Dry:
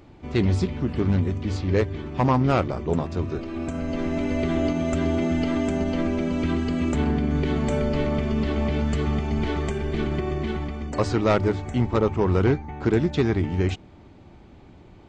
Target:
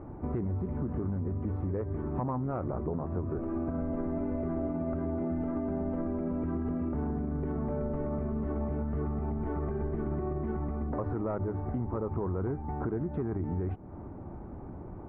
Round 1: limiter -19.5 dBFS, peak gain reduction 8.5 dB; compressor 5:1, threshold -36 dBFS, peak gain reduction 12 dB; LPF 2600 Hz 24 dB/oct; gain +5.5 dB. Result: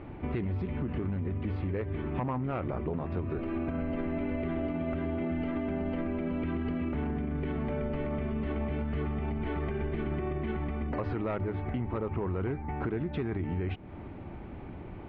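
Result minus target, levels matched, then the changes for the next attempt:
2000 Hz band +9.5 dB
change: LPF 1300 Hz 24 dB/oct

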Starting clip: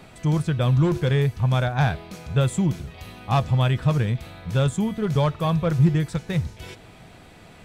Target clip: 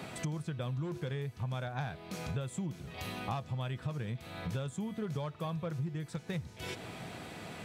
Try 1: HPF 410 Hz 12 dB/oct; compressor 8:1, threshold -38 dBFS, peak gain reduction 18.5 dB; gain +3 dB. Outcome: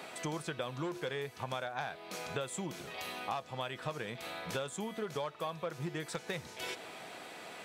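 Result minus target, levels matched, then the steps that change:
125 Hz band -8.5 dB
change: HPF 110 Hz 12 dB/oct

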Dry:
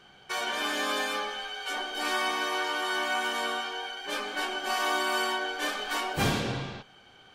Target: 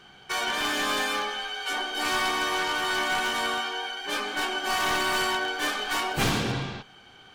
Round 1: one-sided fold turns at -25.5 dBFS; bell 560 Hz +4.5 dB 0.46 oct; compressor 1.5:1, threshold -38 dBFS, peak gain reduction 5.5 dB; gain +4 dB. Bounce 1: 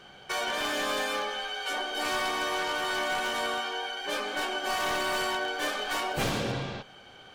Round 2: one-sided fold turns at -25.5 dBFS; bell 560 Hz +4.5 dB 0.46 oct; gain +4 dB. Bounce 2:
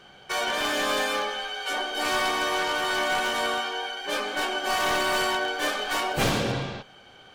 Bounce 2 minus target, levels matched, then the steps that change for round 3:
500 Hz band +4.0 dB
change: bell 560 Hz -4.5 dB 0.46 oct

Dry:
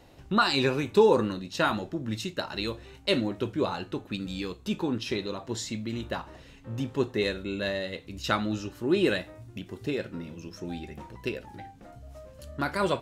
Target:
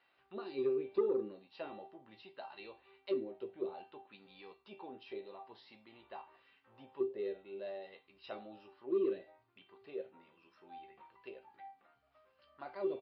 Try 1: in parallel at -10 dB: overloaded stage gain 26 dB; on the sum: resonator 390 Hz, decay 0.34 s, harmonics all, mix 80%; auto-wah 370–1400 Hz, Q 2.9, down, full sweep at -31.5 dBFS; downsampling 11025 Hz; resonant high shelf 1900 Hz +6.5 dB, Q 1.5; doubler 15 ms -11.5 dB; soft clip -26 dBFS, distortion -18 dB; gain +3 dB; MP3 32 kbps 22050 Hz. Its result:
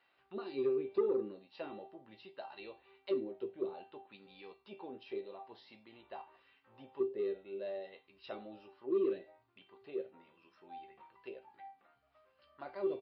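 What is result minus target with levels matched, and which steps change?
overloaded stage: distortion -5 dB
change: overloaded stage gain 36 dB

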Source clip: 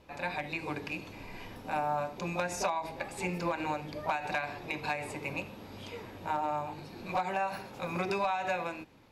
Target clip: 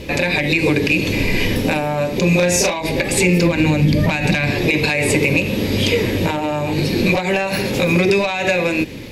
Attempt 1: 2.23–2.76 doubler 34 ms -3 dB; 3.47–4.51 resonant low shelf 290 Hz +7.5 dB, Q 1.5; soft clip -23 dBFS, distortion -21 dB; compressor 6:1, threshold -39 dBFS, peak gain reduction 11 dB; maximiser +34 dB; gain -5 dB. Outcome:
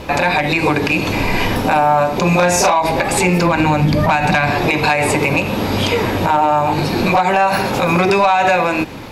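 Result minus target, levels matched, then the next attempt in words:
1000 Hz band +10.0 dB
2.23–2.76 doubler 34 ms -3 dB; 3.47–4.51 resonant low shelf 290 Hz +7.5 dB, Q 1.5; soft clip -23 dBFS, distortion -21 dB; compressor 6:1, threshold -39 dBFS, peak gain reduction 11 dB; band shelf 1000 Hz -13 dB 1.4 oct; maximiser +34 dB; gain -5 dB

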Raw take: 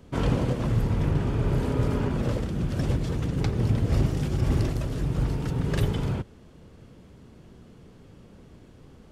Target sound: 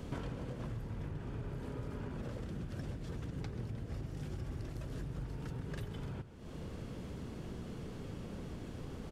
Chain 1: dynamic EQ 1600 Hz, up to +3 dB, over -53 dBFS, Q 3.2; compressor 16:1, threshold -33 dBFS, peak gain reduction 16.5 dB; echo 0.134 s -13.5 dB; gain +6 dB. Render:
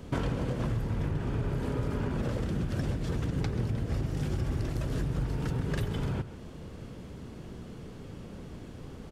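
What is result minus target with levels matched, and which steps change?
compressor: peak gain reduction -11 dB
change: compressor 16:1, threshold -44.5 dBFS, peak gain reduction 27 dB

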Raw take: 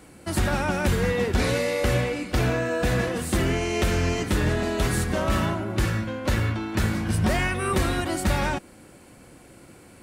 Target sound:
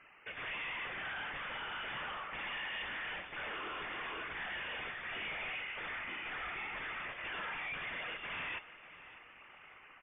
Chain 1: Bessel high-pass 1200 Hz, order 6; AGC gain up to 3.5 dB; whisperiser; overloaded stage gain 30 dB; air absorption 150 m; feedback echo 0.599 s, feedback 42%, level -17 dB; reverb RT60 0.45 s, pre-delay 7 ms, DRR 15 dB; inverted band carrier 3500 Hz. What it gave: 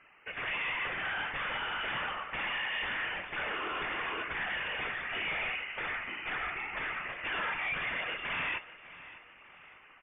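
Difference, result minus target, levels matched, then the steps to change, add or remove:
overloaded stage: distortion -4 dB
change: overloaded stage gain 38 dB

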